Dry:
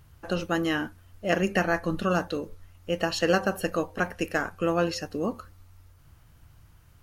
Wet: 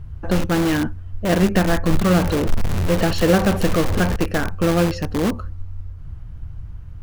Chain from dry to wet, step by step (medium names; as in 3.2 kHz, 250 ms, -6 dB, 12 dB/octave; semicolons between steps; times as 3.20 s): 2.09–4.16 s: jump at every zero crossing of -31.5 dBFS; RIAA curve playback; in parallel at -6 dB: integer overflow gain 19.5 dB; on the sum: trim +2.5 dB